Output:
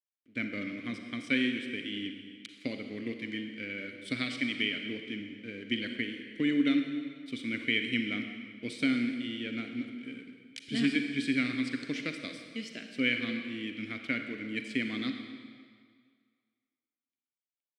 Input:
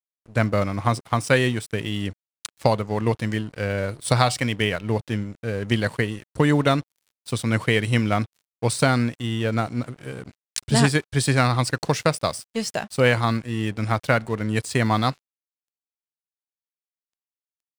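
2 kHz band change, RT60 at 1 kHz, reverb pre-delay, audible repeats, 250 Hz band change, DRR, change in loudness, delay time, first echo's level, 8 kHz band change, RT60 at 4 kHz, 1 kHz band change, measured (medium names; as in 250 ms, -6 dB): -7.0 dB, 2.0 s, 37 ms, no echo, -6.0 dB, 5.0 dB, -10.0 dB, no echo, no echo, -22.5 dB, 1.7 s, -25.0 dB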